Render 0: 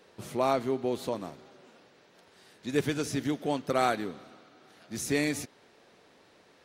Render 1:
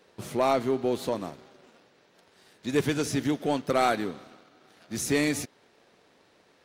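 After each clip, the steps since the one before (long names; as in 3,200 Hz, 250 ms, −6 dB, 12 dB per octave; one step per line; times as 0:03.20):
leveller curve on the samples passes 1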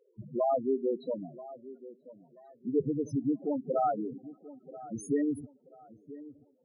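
spectral peaks only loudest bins 4
delay with a low-pass on its return 983 ms, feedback 31%, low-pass 1,300 Hz, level −17 dB
level −1.5 dB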